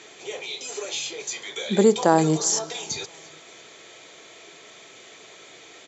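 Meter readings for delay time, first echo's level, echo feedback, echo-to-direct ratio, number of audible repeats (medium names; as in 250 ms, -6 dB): 342 ms, -23.0 dB, 45%, -22.0 dB, 2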